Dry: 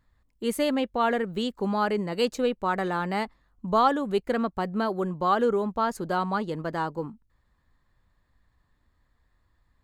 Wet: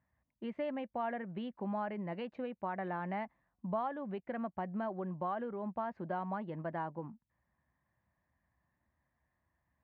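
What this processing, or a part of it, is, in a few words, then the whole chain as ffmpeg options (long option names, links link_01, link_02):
bass amplifier: -af "acompressor=threshold=-28dB:ratio=3,highpass=frequency=74:width=0.5412,highpass=frequency=74:width=1.3066,equalizer=frequency=96:width_type=q:width=4:gain=-9,equalizer=frequency=280:width_type=q:width=4:gain=-4,equalizer=frequency=440:width_type=q:width=4:gain=-10,equalizer=frequency=650:width_type=q:width=4:gain=4,equalizer=frequency=1300:width_type=q:width=4:gain=-8,lowpass=frequency=2300:width=0.5412,lowpass=frequency=2300:width=1.3066,volume=-5.5dB"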